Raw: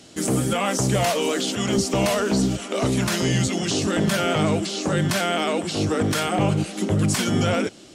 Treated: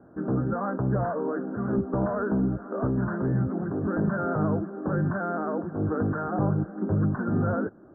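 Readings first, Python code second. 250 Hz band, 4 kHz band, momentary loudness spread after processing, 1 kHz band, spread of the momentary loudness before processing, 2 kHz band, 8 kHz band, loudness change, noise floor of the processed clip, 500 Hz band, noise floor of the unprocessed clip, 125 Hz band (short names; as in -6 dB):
-4.0 dB, under -40 dB, 4 LU, -6.0 dB, 3 LU, -10.0 dB, under -40 dB, -5.5 dB, -49 dBFS, -6.0 dB, -44 dBFS, -3.0 dB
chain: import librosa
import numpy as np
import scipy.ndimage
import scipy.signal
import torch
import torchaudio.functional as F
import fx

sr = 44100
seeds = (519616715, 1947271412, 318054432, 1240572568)

y = scipy.signal.sosfilt(scipy.signal.butter(16, 1600.0, 'lowpass', fs=sr, output='sos'), x)
y = fx.dynamic_eq(y, sr, hz=690.0, q=0.85, threshold_db=-37.0, ratio=4.0, max_db=-4)
y = y * librosa.db_to_amplitude(-3.0)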